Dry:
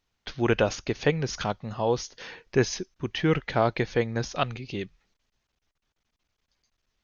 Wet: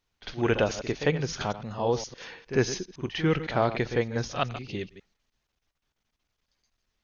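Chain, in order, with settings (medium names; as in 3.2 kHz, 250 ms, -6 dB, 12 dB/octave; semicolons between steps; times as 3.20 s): chunks repeated in reverse 102 ms, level -13 dB; pre-echo 50 ms -12.5 dB; trim -1.5 dB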